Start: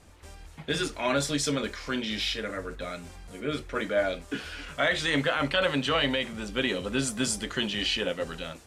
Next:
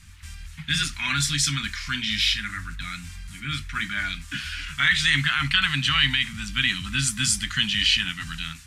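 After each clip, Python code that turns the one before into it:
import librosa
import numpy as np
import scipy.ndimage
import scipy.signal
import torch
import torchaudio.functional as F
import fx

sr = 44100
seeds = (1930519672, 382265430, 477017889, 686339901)

y = scipy.signal.sosfilt(scipy.signal.cheby1(2, 1.0, [140.0, 1800.0], 'bandstop', fs=sr, output='sos'), x)
y = y * librosa.db_to_amplitude(8.5)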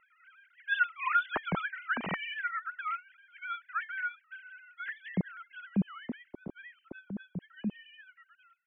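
y = fx.sine_speech(x, sr)
y = fx.filter_sweep_lowpass(y, sr, from_hz=1100.0, to_hz=360.0, start_s=3.33, end_s=5.47, q=1.2)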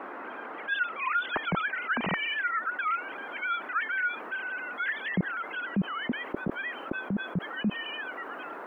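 y = fx.rider(x, sr, range_db=4, speed_s=0.5)
y = fx.dmg_noise_band(y, sr, seeds[0], low_hz=250.0, high_hz=1500.0, level_db=-58.0)
y = fx.env_flatten(y, sr, amount_pct=50)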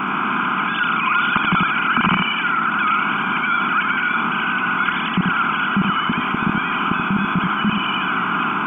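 y = fx.bin_compress(x, sr, power=0.4)
y = fx.fixed_phaser(y, sr, hz=2700.0, stages=8)
y = y + 10.0 ** (-3.5 / 20.0) * np.pad(y, (int(82 * sr / 1000.0), 0))[:len(y)]
y = y * librosa.db_to_amplitude(7.0)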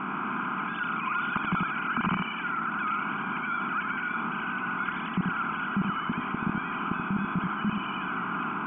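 y = fx.air_absorb(x, sr, metres=470.0)
y = y * librosa.db_to_amplitude(-8.5)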